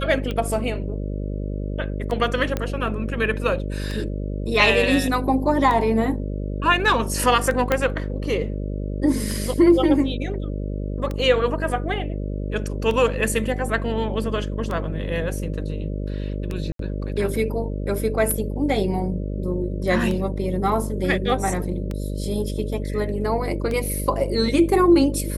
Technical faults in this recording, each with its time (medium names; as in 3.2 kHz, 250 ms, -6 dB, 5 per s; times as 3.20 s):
buzz 50 Hz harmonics 12 -27 dBFS
tick 33 1/3 rpm -15 dBFS
2.57 s: pop -11 dBFS
7.72 s: pop -6 dBFS
16.72–16.79 s: dropout 73 ms